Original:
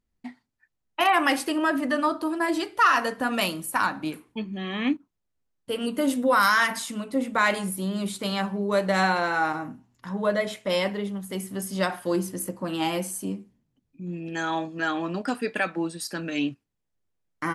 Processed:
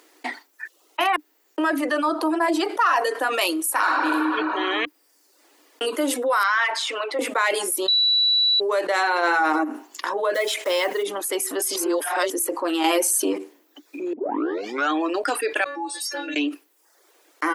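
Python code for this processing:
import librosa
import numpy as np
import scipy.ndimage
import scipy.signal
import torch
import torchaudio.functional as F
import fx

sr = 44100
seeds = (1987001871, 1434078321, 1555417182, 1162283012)

y = fx.peak_eq(x, sr, hz=770.0, db=8.0, octaves=1.4, at=(2.18, 3.05))
y = fx.reverb_throw(y, sr, start_s=3.7, length_s=0.56, rt60_s=2.5, drr_db=-3.5)
y = fx.bandpass_edges(y, sr, low_hz=660.0, high_hz=3400.0, at=(6.43, 7.19))
y = fx.env_flatten(y, sr, amount_pct=50, at=(9.22, 9.63), fade=0.02)
y = fx.block_float(y, sr, bits=5, at=(10.34, 11.02), fade=0.02)
y = fx.stiff_resonator(y, sr, f0_hz=280.0, decay_s=0.43, stiffness=0.002, at=(15.64, 16.36))
y = fx.edit(y, sr, fx.room_tone_fill(start_s=1.16, length_s=0.42),
    fx.room_tone_fill(start_s=4.85, length_s=0.96),
    fx.bleep(start_s=7.88, length_s=0.72, hz=3940.0, db=-11.5),
    fx.reverse_span(start_s=11.76, length_s=0.54),
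    fx.clip_gain(start_s=12.84, length_s=0.54, db=10.5),
    fx.tape_start(start_s=14.13, length_s=0.79), tone=tone)
y = fx.dereverb_blind(y, sr, rt60_s=0.51)
y = scipy.signal.sosfilt(scipy.signal.cheby1(6, 1.0, 300.0, 'highpass', fs=sr, output='sos'), y)
y = fx.env_flatten(y, sr, amount_pct=70)
y = F.gain(torch.from_numpy(y), -5.5).numpy()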